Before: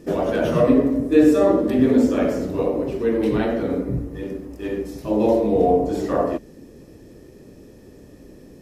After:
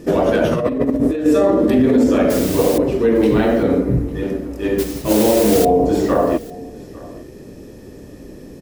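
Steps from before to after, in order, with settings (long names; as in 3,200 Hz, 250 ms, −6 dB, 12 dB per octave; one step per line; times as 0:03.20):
brickwall limiter −13.5 dBFS, peak gain reduction 10.5 dB
0:00.44–0:01.26: compressor whose output falls as the input rises −24 dBFS, ratio −0.5
0:02.30–0:02.78: bit-depth reduction 6 bits, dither triangular
0:04.78–0:05.65: noise that follows the level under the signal 11 dB
single-tap delay 852 ms −21.5 dB
level +7.5 dB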